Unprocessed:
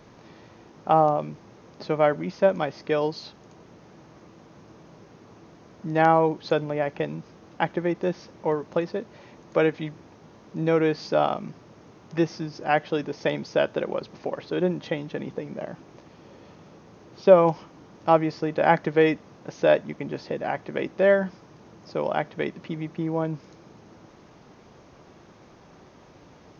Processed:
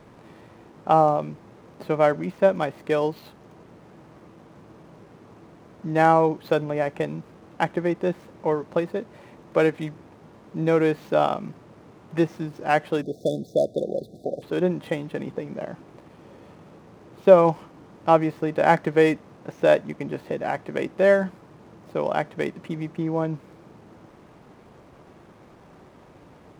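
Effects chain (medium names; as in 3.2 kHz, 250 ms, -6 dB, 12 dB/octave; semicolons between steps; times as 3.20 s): median filter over 9 samples; spectral selection erased 13.02–14.42 s, 770–3400 Hz; trim +1.5 dB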